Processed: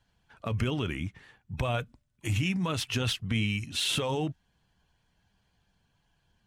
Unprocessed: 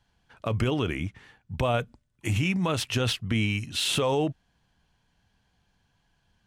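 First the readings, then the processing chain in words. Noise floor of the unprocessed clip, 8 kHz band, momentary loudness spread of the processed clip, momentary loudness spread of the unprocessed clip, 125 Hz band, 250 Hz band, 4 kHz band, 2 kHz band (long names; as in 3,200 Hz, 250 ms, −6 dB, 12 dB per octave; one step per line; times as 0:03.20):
−72 dBFS, −2.5 dB, 12 LU, 12 LU, −2.5 dB, −3.5 dB, −2.0 dB, −3.0 dB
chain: spectral magnitudes quantised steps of 15 dB
dynamic equaliser 530 Hz, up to −5 dB, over −39 dBFS, Q 0.75
level −1.5 dB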